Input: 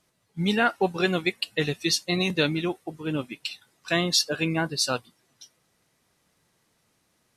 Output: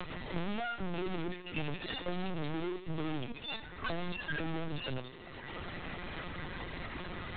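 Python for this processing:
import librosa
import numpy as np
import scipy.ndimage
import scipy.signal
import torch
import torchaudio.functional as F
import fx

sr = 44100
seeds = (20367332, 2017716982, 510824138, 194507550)

p1 = fx.hpss_only(x, sr, part='harmonic')
p2 = p1 + 0.42 * np.pad(p1, (int(5.6 * sr / 1000.0), 0))[:len(p1)]
p3 = np.maximum(p2, 0.0)
p4 = fx.tube_stage(p3, sr, drive_db=42.0, bias=0.25)
p5 = p4 + fx.echo_single(p4, sr, ms=84, db=-18.0, dry=0)
p6 = fx.rev_fdn(p5, sr, rt60_s=1.7, lf_ratio=0.9, hf_ratio=0.8, size_ms=16.0, drr_db=18.5)
p7 = fx.lpc_vocoder(p6, sr, seeds[0], excitation='pitch_kept', order=16)
p8 = fx.band_squash(p7, sr, depth_pct=100)
y = F.gain(torch.from_numpy(p8), 16.0).numpy()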